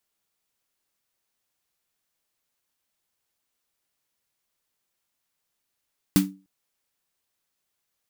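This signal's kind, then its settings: snare drum length 0.30 s, tones 190 Hz, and 290 Hz, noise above 770 Hz, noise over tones -7 dB, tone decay 0.33 s, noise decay 0.19 s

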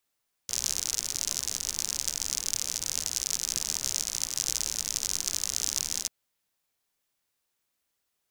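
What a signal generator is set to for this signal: rain from filtered ticks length 5.59 s, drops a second 70, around 6.1 kHz, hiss -15 dB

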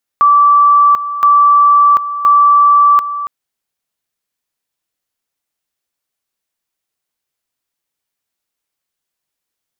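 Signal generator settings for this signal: two-level tone 1.16 kHz -4.5 dBFS, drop 12.5 dB, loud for 0.74 s, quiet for 0.28 s, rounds 3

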